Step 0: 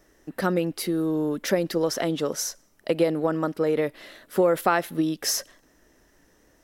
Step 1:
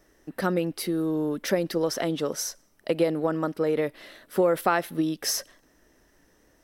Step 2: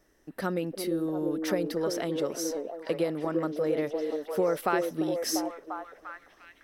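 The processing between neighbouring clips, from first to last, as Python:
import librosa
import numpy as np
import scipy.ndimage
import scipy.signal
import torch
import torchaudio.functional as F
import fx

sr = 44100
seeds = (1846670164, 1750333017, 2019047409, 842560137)

y1 = fx.notch(x, sr, hz=7000.0, q=12.0)
y1 = y1 * librosa.db_to_amplitude(-1.5)
y2 = fx.echo_stepped(y1, sr, ms=346, hz=360.0, octaves=0.7, feedback_pct=70, wet_db=-1)
y2 = y2 * librosa.db_to_amplitude(-5.0)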